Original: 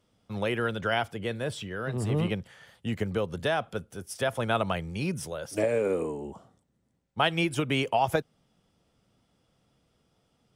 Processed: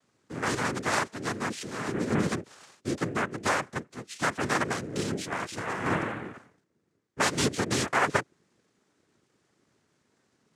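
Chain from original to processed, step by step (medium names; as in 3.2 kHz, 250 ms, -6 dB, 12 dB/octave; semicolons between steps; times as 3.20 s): 4.92–5.86 s: compressor with a negative ratio -31 dBFS, ratio -1; noise-vocoded speech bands 3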